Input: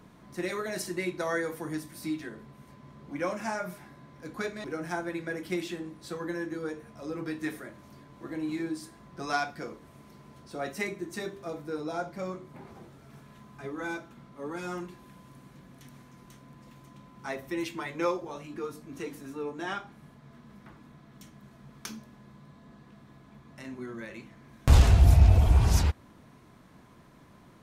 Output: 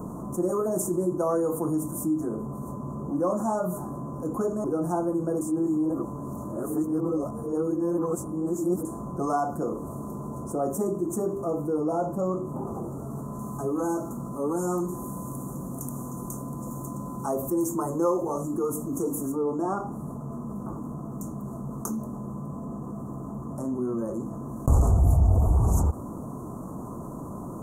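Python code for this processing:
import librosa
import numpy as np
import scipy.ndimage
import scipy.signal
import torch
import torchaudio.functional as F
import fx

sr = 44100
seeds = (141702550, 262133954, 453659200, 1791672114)

y = fx.high_shelf(x, sr, hz=3800.0, db=10.0, at=(13.39, 19.32))
y = fx.edit(y, sr, fx.reverse_span(start_s=5.41, length_s=3.44), tone=tone)
y = scipy.signal.sosfilt(scipy.signal.cheby1(4, 1.0, [1200.0, 6800.0], 'bandstop', fs=sr, output='sos'), y)
y = fx.peak_eq(y, sr, hz=270.0, db=3.5, octaves=2.1)
y = fx.env_flatten(y, sr, amount_pct=50)
y = y * librosa.db_to_amplitude(-3.0)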